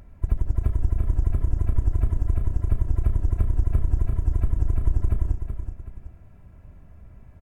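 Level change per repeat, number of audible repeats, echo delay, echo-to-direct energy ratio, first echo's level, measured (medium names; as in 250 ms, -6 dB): -8.0 dB, 2, 377 ms, -7.5 dB, -8.0 dB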